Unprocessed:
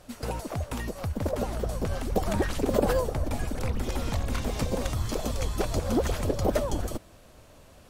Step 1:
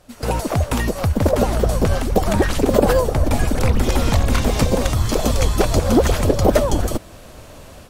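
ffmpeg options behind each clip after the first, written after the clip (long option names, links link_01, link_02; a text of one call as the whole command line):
ffmpeg -i in.wav -af "dynaudnorm=framelen=160:gausssize=3:maxgain=13dB" out.wav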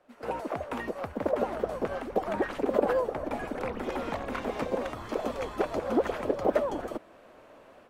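ffmpeg -i in.wav -filter_complex "[0:a]acrossover=split=240 2600:gain=0.0891 1 0.126[link_01][link_02][link_03];[link_01][link_02][link_03]amix=inputs=3:normalize=0,volume=-9dB" out.wav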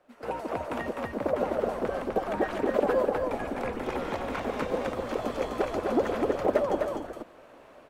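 ffmpeg -i in.wav -af "aecho=1:1:145.8|253.6:0.251|0.631" out.wav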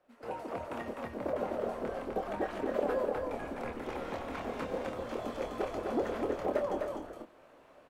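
ffmpeg -i in.wav -filter_complex "[0:a]asplit=2[link_01][link_02];[link_02]adelay=26,volume=-6dB[link_03];[link_01][link_03]amix=inputs=2:normalize=0,volume=-7.5dB" out.wav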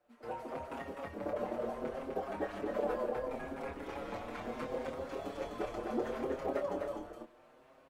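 ffmpeg -i in.wav -filter_complex "[0:a]asplit=2[link_01][link_02];[link_02]adelay=6.4,afreqshift=0.7[link_03];[link_01][link_03]amix=inputs=2:normalize=1" out.wav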